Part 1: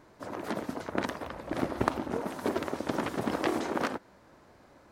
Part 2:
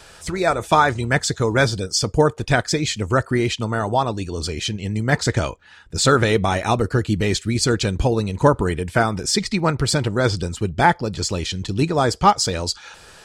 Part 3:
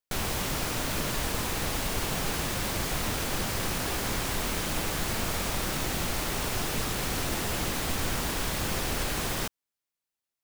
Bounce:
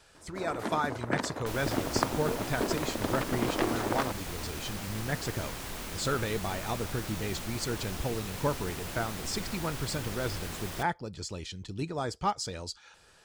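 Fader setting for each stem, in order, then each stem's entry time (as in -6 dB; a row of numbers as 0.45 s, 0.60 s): -0.5 dB, -15.0 dB, -9.0 dB; 0.15 s, 0.00 s, 1.35 s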